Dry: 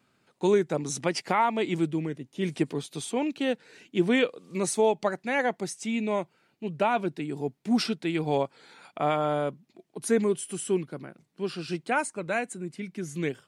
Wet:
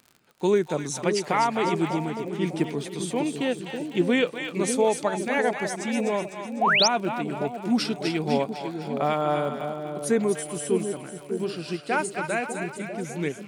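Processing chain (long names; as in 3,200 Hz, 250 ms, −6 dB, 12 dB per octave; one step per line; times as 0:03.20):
echo with a time of its own for lows and highs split 670 Hz, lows 599 ms, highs 251 ms, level −6 dB
sound drawn into the spectrogram rise, 0:06.61–0:06.88, 620–6,600 Hz −21 dBFS
surface crackle 54 per second −39 dBFS
level +1 dB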